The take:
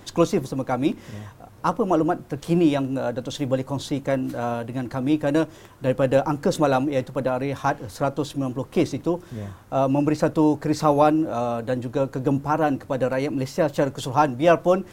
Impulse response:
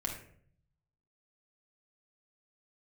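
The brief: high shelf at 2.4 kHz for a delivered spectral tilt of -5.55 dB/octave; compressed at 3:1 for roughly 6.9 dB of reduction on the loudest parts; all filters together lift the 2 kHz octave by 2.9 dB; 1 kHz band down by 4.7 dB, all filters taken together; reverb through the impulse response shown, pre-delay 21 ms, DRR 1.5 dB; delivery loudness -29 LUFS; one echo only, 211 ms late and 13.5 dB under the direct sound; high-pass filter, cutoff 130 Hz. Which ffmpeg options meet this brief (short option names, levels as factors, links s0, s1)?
-filter_complex "[0:a]highpass=130,equalizer=f=1000:t=o:g=-9,equalizer=f=2000:t=o:g=6,highshelf=f=2400:g=4,acompressor=threshold=0.0708:ratio=3,aecho=1:1:211:0.211,asplit=2[s0][s1];[1:a]atrim=start_sample=2205,adelay=21[s2];[s1][s2]afir=irnorm=-1:irlink=0,volume=0.668[s3];[s0][s3]amix=inputs=2:normalize=0,volume=0.668"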